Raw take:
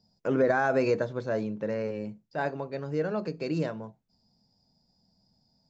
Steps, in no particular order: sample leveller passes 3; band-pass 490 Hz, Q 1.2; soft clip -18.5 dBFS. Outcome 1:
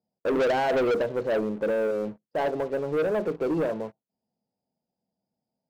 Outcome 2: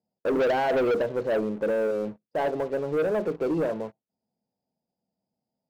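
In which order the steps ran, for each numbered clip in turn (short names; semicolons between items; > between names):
band-pass > soft clip > sample leveller; soft clip > band-pass > sample leveller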